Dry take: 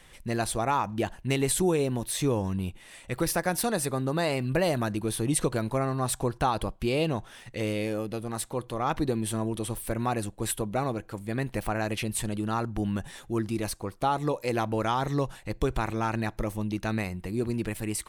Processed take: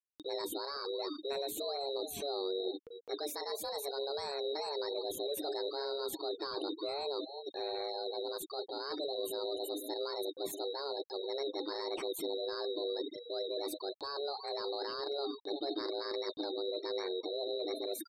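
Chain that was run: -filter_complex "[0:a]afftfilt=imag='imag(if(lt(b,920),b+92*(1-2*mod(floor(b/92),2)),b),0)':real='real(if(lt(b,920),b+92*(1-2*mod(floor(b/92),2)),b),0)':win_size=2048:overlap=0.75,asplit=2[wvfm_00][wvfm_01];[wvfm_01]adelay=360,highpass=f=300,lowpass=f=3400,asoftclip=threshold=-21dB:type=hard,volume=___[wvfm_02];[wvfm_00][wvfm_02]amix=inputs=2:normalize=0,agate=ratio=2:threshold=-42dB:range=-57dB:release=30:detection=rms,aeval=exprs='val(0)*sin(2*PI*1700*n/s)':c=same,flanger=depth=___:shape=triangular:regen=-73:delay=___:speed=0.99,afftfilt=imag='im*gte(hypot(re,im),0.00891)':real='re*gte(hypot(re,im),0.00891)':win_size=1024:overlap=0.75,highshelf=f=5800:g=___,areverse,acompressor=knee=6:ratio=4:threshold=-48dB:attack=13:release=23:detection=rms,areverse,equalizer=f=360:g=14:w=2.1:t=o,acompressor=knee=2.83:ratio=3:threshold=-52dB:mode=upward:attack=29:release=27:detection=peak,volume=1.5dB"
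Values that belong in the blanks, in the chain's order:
-17dB, 5.5, 7.8, 8.5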